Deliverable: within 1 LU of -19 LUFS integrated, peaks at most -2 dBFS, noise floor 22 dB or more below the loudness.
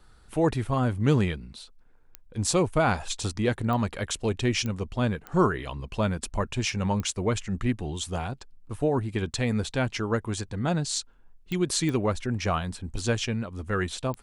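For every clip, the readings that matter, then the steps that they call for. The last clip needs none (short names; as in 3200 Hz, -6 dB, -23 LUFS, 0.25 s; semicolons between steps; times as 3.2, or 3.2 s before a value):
clicks 8; loudness -28.0 LUFS; peak -9.5 dBFS; loudness target -19.0 LUFS
-> de-click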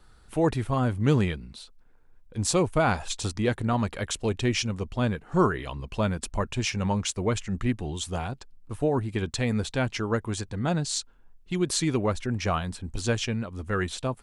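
clicks 0; loudness -28.0 LUFS; peak -9.5 dBFS; loudness target -19.0 LUFS
-> gain +9 dB; limiter -2 dBFS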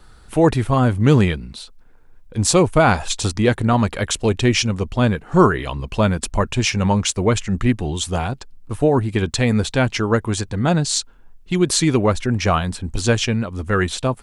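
loudness -19.0 LUFS; peak -2.0 dBFS; noise floor -46 dBFS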